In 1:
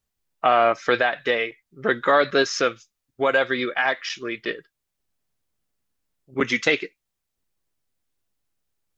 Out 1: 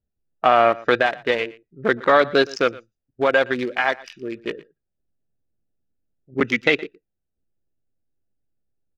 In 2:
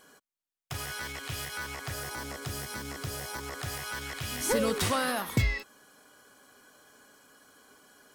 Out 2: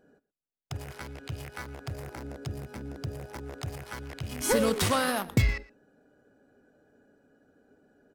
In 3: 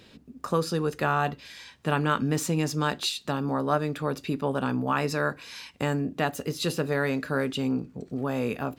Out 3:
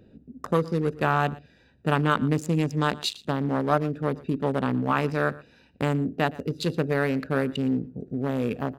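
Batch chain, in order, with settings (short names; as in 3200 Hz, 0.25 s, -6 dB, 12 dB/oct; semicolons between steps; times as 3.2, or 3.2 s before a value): Wiener smoothing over 41 samples; on a send: echo 0.117 s -21 dB; on the sum: gain +3 dB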